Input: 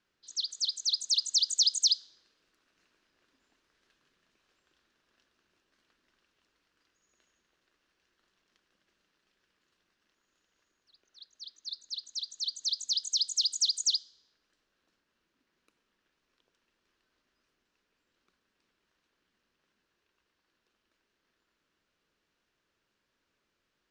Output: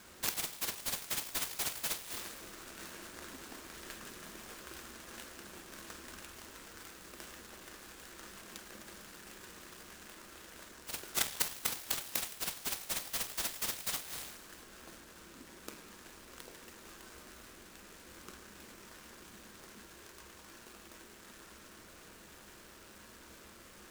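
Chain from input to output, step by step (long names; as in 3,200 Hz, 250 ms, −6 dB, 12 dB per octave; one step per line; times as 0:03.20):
low-pass filter 5,400 Hz 24 dB per octave
in parallel at +3 dB: downward compressor, threshold −36 dBFS, peak gain reduction 13.5 dB
on the sum: brickwall limiter −20 dBFS, peak gain reduction 6.5 dB
gate with flip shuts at −36 dBFS, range −25 dB
on a send at −4.5 dB: convolution reverb RT60 0.95 s, pre-delay 7 ms
on the sum: short delay modulated by noise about 4,900 Hz, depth 0.079 ms
level +16.5 dB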